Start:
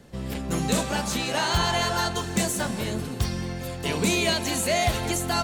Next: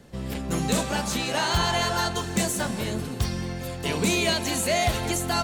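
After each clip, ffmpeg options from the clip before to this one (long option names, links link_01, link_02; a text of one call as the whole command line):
ffmpeg -i in.wav -af "asoftclip=type=hard:threshold=-15dB" out.wav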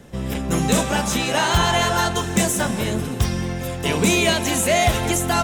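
ffmpeg -i in.wav -af "bandreject=frequency=4400:width=6.1,volume=6dB" out.wav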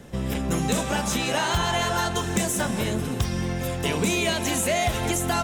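ffmpeg -i in.wav -af "acompressor=threshold=-23dB:ratio=2.5" out.wav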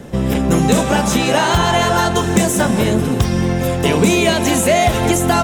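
ffmpeg -i in.wav -af "equalizer=frequency=330:width=0.31:gain=5.5,volume=6.5dB" out.wav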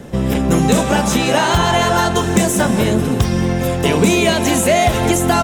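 ffmpeg -i in.wav -af "aecho=1:1:186:0.0794" out.wav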